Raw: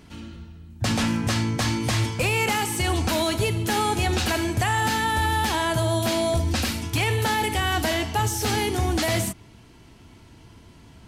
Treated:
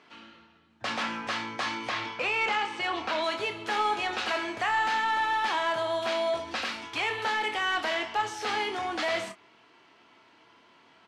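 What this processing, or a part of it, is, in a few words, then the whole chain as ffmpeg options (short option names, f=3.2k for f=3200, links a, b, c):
intercom: -filter_complex "[0:a]asettb=1/sr,asplit=3[a][b][c];[a]atrim=end=1.894[d];[b]atrim=start=1.89:end=3.24,asetpts=PTS-STARTPTS,afade=t=in:d=0.004:c=qsin,afade=t=out:st=1.346:d=0.004:c=qsin,lowpass=5.2k[e];[c]atrim=start=3.236[f];[d][e]acrossfade=d=0.004:c1=hsin:c2=qsin[g];[g][f]acrossfade=d=0.004:c1=qsin:c2=hsin,highpass=460,lowpass=3.8k,equalizer=f=1.2k:t=o:w=0.38:g=4,equalizer=f=2k:t=o:w=2.5:g=3,asoftclip=type=tanh:threshold=-15.5dB,asplit=2[h][i];[i]adelay=26,volume=-8dB[j];[h][j]amix=inputs=2:normalize=0,volume=-4.5dB"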